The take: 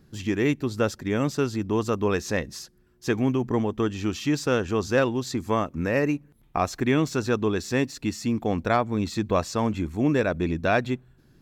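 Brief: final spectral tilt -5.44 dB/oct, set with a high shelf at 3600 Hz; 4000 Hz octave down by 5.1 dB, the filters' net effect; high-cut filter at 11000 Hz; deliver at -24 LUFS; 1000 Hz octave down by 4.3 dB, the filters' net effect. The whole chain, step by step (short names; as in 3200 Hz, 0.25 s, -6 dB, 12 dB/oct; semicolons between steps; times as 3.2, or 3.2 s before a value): LPF 11000 Hz; bell 1000 Hz -6 dB; high shelf 3600 Hz +3.5 dB; bell 4000 Hz -9 dB; gain +3 dB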